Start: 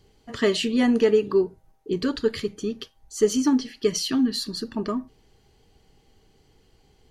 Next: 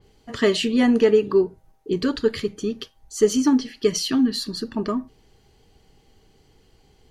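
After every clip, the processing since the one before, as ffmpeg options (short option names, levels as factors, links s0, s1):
-af "adynamicequalizer=threshold=0.00794:dfrequency=3500:dqfactor=0.7:tfrequency=3500:tqfactor=0.7:attack=5:release=100:ratio=0.375:range=1.5:mode=cutabove:tftype=highshelf,volume=1.33"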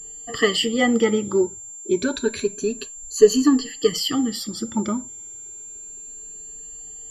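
-af "afftfilt=real='re*pow(10,18/40*sin(2*PI*(1.5*log(max(b,1)*sr/1024/100)/log(2)-(0.29)*(pts-256)/sr)))':imag='im*pow(10,18/40*sin(2*PI*(1.5*log(max(b,1)*sr/1024/100)/log(2)-(0.29)*(pts-256)/sr)))':win_size=1024:overlap=0.75,equalizer=f=61:w=0.37:g=-3,aeval=exprs='val(0)+0.02*sin(2*PI*7300*n/s)':c=same,volume=0.841"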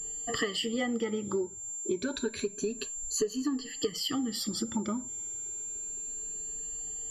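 -af "acompressor=threshold=0.0355:ratio=6"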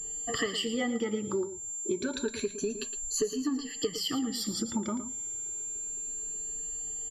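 -af "aecho=1:1:113:0.251"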